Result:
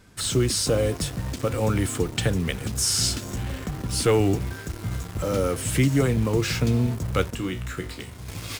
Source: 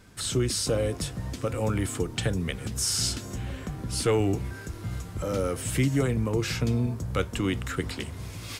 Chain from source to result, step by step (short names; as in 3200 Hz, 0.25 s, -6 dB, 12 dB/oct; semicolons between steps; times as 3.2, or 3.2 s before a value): in parallel at -5 dB: requantised 6-bit, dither none; 7.35–8.28 on the sum: resonator 61 Hz, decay 0.31 s, harmonics all, mix 80%